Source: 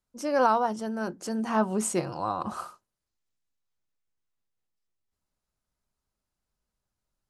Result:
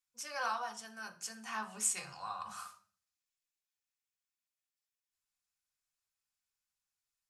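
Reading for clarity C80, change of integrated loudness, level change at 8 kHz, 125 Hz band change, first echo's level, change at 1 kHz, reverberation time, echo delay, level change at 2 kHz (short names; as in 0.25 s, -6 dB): 19.5 dB, -11.0 dB, -0.5 dB, -21.5 dB, none, -12.5 dB, 0.40 s, none, -5.0 dB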